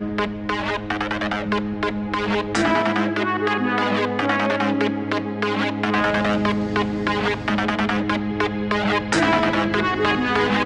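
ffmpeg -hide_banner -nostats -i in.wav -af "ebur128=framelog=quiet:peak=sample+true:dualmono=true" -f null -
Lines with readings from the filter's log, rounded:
Integrated loudness:
  I:         -18.3 LUFS
  Threshold: -28.3 LUFS
Loudness range:
  LRA:         1.5 LU
  Threshold: -38.2 LUFS
  LRA low:   -19.0 LUFS
  LRA high:  -17.5 LUFS
Sample peak:
  Peak:       -5.0 dBFS
True peak:
  Peak:       -5.0 dBFS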